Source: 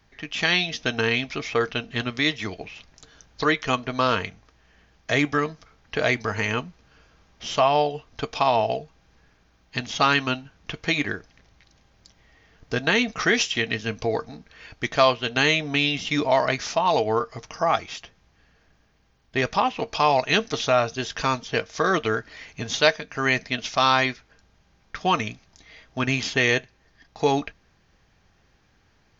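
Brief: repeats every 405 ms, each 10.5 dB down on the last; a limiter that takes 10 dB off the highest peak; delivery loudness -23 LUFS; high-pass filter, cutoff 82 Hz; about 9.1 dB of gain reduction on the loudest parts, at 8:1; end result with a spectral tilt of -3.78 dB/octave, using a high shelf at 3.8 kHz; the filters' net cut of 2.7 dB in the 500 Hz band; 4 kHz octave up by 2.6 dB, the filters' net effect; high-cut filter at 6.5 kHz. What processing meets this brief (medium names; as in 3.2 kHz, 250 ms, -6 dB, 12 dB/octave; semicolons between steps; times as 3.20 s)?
high-pass 82 Hz; low-pass 6.5 kHz; peaking EQ 500 Hz -3.5 dB; treble shelf 3.8 kHz -5.5 dB; peaking EQ 4 kHz +7 dB; compression 8:1, threshold -23 dBFS; peak limiter -18 dBFS; feedback delay 405 ms, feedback 30%, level -10.5 dB; trim +8.5 dB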